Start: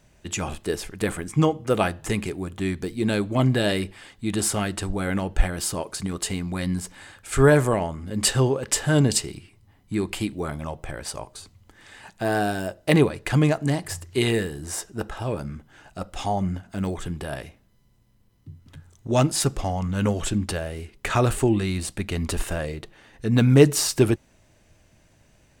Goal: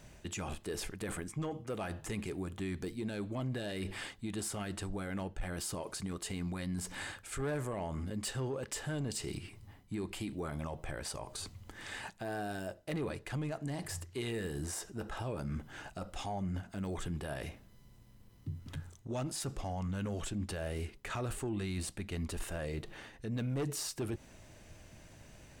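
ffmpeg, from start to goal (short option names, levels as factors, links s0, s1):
-af "asoftclip=type=tanh:threshold=0.224,areverse,acompressor=threshold=0.02:ratio=16,areverse,alimiter=level_in=2.99:limit=0.0631:level=0:latency=1:release=80,volume=0.335,volume=1.41"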